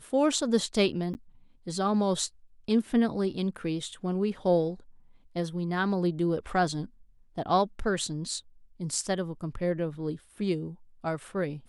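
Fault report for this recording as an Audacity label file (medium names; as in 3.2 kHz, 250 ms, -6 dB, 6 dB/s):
1.140000	1.150000	dropout 9.6 ms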